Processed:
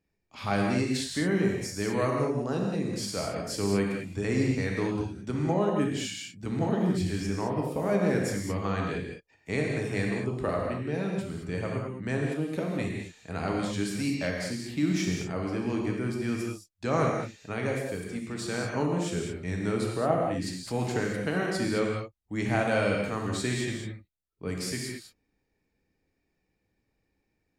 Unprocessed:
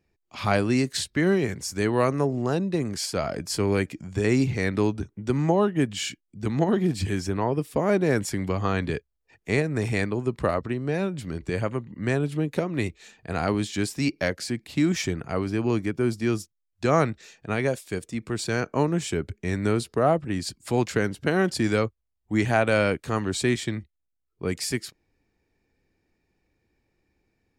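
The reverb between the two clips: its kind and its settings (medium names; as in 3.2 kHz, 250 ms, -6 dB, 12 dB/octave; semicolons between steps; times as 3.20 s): gated-style reverb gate 240 ms flat, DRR -1 dB; trim -7.5 dB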